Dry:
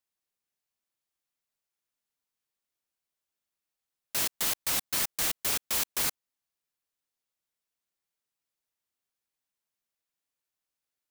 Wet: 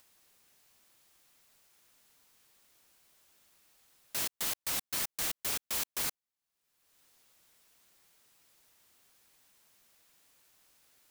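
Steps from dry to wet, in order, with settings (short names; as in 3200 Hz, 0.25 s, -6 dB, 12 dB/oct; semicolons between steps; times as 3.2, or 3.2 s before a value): upward compressor, threshold -40 dBFS; gain -5 dB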